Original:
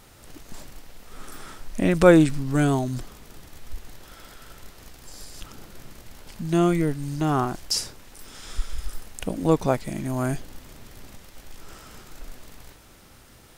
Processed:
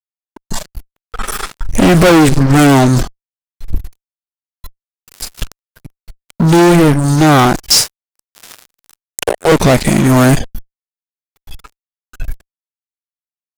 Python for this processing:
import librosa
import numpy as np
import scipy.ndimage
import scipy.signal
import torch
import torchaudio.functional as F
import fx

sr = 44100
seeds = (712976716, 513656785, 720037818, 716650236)

y = fx.ellip_highpass(x, sr, hz=390.0, order=4, stop_db=40, at=(7.82, 9.52))
y = fx.noise_reduce_blind(y, sr, reduce_db=20)
y = fx.fuzz(y, sr, gain_db=30.0, gate_db=-38.0)
y = y * librosa.db_to_amplitude(8.0)